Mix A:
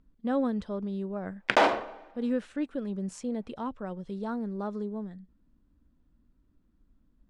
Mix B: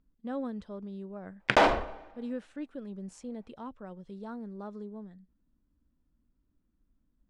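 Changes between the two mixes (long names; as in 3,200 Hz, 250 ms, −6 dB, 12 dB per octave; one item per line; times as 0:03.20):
speech −7.5 dB
background: remove high-pass filter 210 Hz 12 dB per octave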